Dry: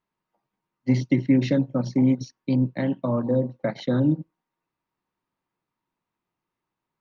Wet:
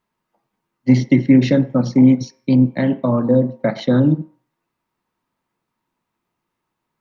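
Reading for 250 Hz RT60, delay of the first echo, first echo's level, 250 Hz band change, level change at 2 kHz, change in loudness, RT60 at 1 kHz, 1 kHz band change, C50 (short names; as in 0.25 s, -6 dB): 0.35 s, none, none, +8.0 dB, +7.5 dB, +8.0 dB, 0.55 s, +7.0 dB, 17.0 dB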